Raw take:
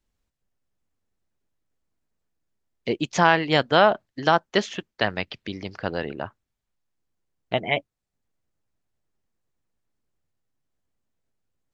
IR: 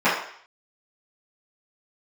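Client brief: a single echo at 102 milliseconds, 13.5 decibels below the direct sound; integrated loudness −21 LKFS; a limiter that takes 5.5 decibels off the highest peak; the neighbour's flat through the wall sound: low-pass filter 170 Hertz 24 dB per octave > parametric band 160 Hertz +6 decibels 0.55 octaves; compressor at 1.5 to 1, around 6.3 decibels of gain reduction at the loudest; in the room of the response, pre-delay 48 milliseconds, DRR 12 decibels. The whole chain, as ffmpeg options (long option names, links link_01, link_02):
-filter_complex "[0:a]acompressor=threshold=-29dB:ratio=1.5,alimiter=limit=-13.5dB:level=0:latency=1,aecho=1:1:102:0.211,asplit=2[link_01][link_02];[1:a]atrim=start_sample=2205,adelay=48[link_03];[link_02][link_03]afir=irnorm=-1:irlink=0,volume=-33dB[link_04];[link_01][link_04]amix=inputs=2:normalize=0,lowpass=frequency=170:width=0.5412,lowpass=frequency=170:width=1.3066,equalizer=frequency=160:width_type=o:width=0.55:gain=6,volume=19dB"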